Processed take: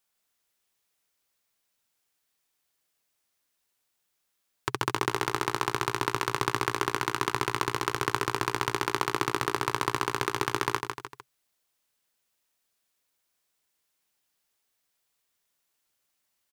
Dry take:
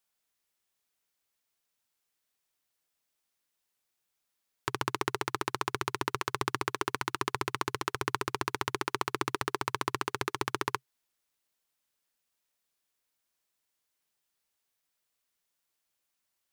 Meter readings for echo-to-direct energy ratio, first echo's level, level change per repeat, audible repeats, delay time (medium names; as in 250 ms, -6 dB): -4.5 dB, -5.5 dB, -6.5 dB, 3, 151 ms